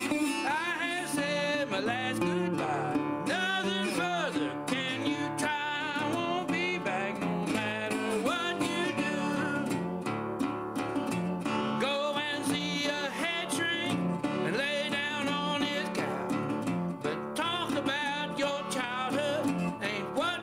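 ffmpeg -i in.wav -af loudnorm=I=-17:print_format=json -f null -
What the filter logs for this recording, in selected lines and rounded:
"input_i" : "-30.9",
"input_tp" : "-16.4",
"input_lra" : "1.2",
"input_thresh" : "-40.9",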